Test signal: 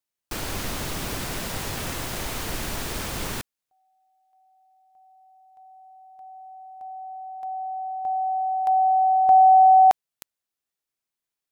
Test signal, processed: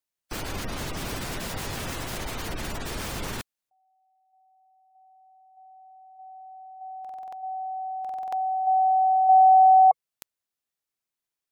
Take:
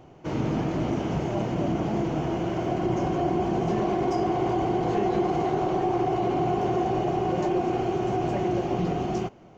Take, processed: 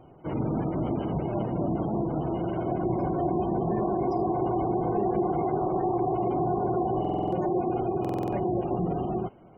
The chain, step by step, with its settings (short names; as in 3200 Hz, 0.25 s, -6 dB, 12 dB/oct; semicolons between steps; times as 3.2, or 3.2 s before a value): spectral gate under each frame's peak -25 dB strong; stuck buffer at 7/8, samples 2048, times 6; gain -1.5 dB